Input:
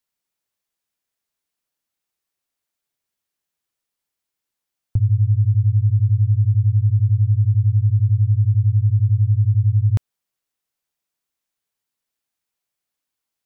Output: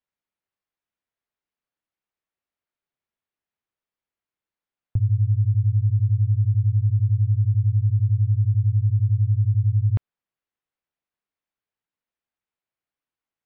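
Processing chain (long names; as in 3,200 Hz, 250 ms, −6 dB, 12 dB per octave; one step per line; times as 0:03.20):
low-pass filter 2,600 Hz 12 dB per octave
level −3.5 dB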